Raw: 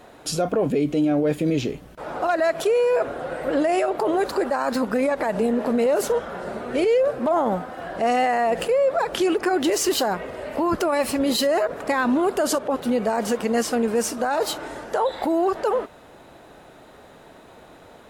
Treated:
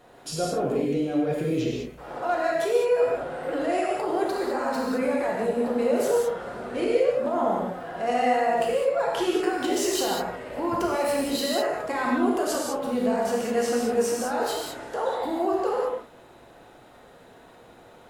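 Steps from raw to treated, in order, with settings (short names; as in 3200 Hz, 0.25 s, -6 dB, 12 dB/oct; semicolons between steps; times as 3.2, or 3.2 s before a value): non-linear reverb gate 0.23 s flat, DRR -3.5 dB; gain -8.5 dB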